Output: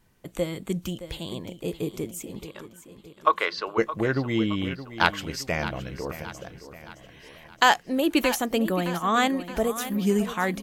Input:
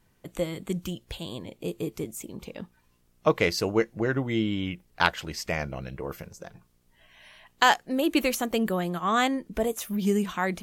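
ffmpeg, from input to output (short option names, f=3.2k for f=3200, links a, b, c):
-filter_complex "[0:a]asplit=3[a][b][c];[a]afade=t=out:st=2.46:d=0.02[d];[b]highpass=f=440:w=0.5412,highpass=f=440:w=1.3066,equalizer=f=480:t=q:w=4:g=-7,equalizer=f=710:t=q:w=4:g=-8,equalizer=f=1.1k:t=q:w=4:g=9,equalizer=f=1.5k:t=q:w=4:g=5,equalizer=f=2.4k:t=q:w=4:g=-5,equalizer=f=3.8k:t=q:w=4:g=3,lowpass=f=4.1k:w=0.5412,lowpass=f=4.1k:w=1.3066,afade=t=in:st=2.46:d=0.02,afade=t=out:st=3.77:d=0.02[e];[c]afade=t=in:st=3.77:d=0.02[f];[d][e][f]amix=inputs=3:normalize=0,asplit=2[g][h];[h]aecho=0:1:619|1238|1857|2476|3095:0.224|0.112|0.056|0.028|0.014[i];[g][i]amix=inputs=2:normalize=0,volume=1.5dB"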